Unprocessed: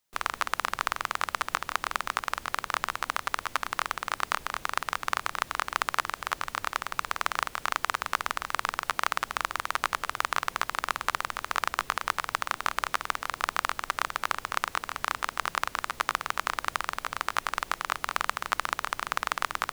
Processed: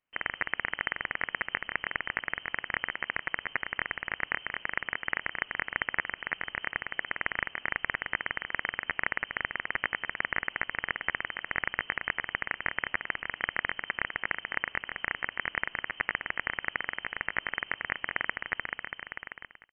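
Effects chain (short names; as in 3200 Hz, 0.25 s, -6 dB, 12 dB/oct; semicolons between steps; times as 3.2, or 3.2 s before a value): ending faded out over 1.48 s; inverted band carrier 3100 Hz; gain -2.5 dB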